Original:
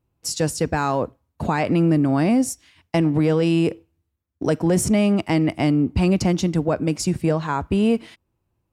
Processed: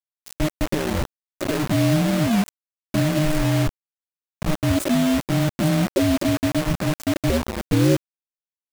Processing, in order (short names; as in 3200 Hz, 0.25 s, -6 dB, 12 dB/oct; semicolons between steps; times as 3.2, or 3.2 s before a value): ring modulator 460 Hz, from 7.3 s 83 Hz; spectral gate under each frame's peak -10 dB strong; EQ curve 580 Hz 0 dB, 830 Hz -26 dB, 1400 Hz -27 dB, 3300 Hz -23 dB, 5500 Hz -8 dB; thinning echo 0.843 s, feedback 23%, high-pass 510 Hz, level -12 dB; bit-crush 5-bit; gain +4.5 dB